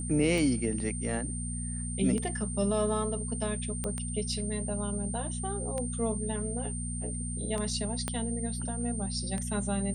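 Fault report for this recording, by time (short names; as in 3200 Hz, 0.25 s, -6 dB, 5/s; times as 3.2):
hum 60 Hz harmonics 4 -36 dBFS
tick 33 1/3 rpm
tone 8900 Hz -38 dBFS
3.84 pop -19 dBFS
8.08 pop -16 dBFS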